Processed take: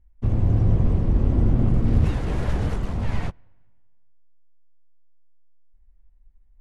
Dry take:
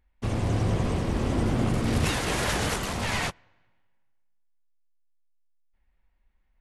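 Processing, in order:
spectral tilt −4 dB per octave
level −6.5 dB

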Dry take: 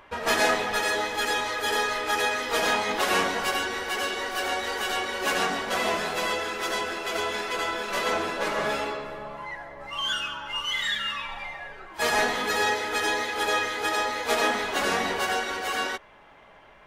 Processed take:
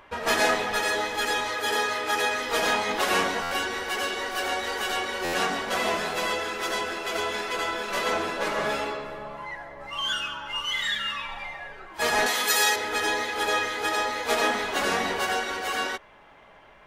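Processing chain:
0:01.55–0:02.31: high-pass filter 80 Hz
0:12.26–0:12.76: RIAA equalisation recording
buffer that repeats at 0:03.42/0:05.24, samples 512, times 7

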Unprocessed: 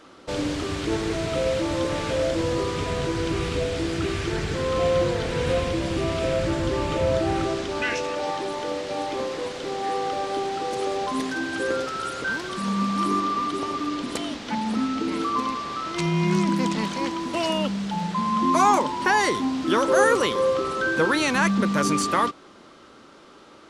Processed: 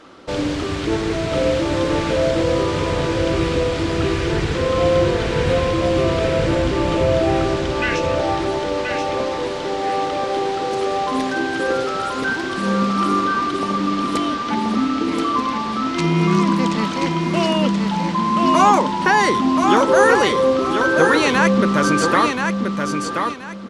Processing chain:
high-shelf EQ 8,100 Hz −9.5 dB
repeating echo 1,029 ms, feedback 26%, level −5 dB
level +5 dB

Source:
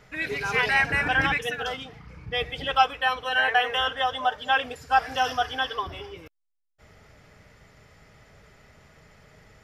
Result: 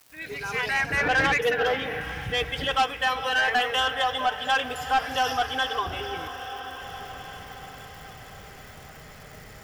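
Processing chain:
fade in at the beginning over 1.30 s
on a send: feedback delay with all-pass diffusion 473 ms, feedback 66%, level −15.5 dB
on the sum: surface crackle 560 per second −52 dBFS
in parallel at +2.5 dB: downward compressor, threshold −39 dBFS, peak gain reduction 23 dB
0:00.97–0:02.01: on the sum: graphic EQ with 10 bands 500 Hz +9 dB, 2,000 Hz +3 dB, 8,000 Hz −11 dB
soft clipping −16 dBFS, distortion −14 dB
high-shelf EQ 10,000 Hz +9.5 dB

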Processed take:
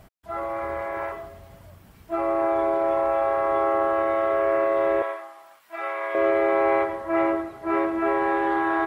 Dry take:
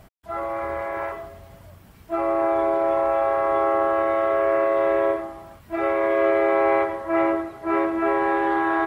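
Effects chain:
0:05.02–0:06.15: high-pass filter 890 Hz 12 dB per octave
level −1.5 dB

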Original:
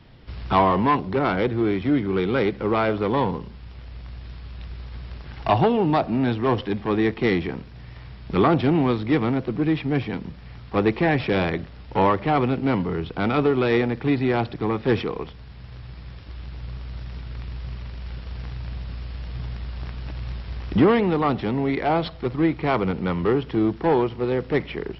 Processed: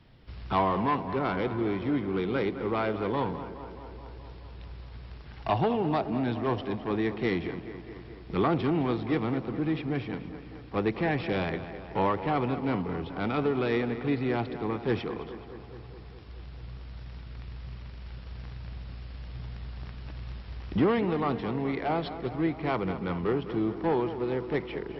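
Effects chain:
tape delay 211 ms, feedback 75%, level −11 dB, low-pass 3,100 Hz
level −7.5 dB

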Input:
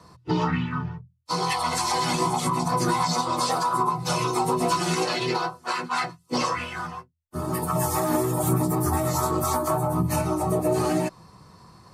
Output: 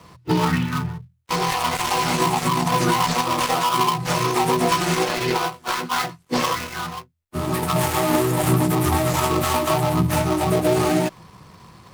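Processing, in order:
gap after every zero crossing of 0.17 ms
parametric band 2,100 Hz +2 dB
level +4.5 dB

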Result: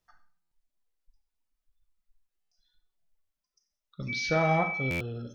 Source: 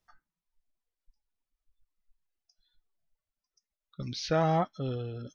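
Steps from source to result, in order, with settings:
four-comb reverb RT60 0.51 s, combs from 30 ms, DRR 7 dB
0:04.08–0:04.94: steady tone 2,300 Hz −31 dBFS
buffer that repeats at 0:00.41/0:02.41/0:04.90, samples 512

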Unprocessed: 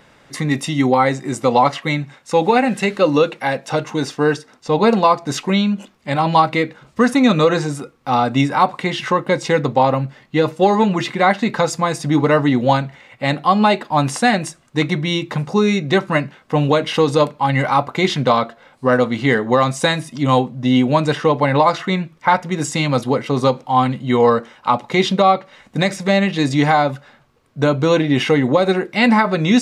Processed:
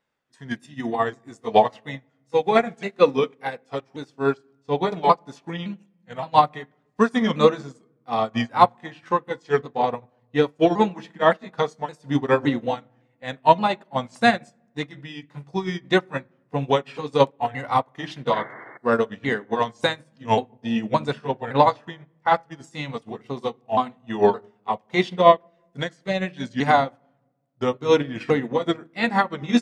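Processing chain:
pitch shifter swept by a sawtooth −3 semitones, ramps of 566 ms
low-shelf EQ 150 Hz −8 dB
sound drawn into the spectrogram noise, 0:18.33–0:18.78, 280–2,200 Hz −24 dBFS
on a send at −11 dB: head-to-tape spacing loss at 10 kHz 26 dB + convolution reverb RT60 1.3 s, pre-delay 13 ms
on the sum: expander for the loud parts 2.5 to 1, over −30 dBFS
level +2 dB

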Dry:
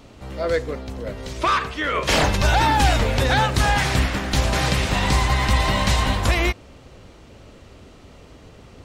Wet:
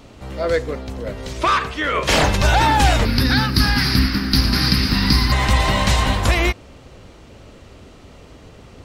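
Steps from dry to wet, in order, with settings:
0:03.05–0:05.32: drawn EQ curve 140 Hz 0 dB, 250 Hz +8 dB, 600 Hz −16 dB, 1,400 Hz 0 dB, 3,400 Hz −5 dB, 4,900 Hz +14 dB, 7,200 Hz −21 dB, 11,000 Hz +6 dB
level +2.5 dB

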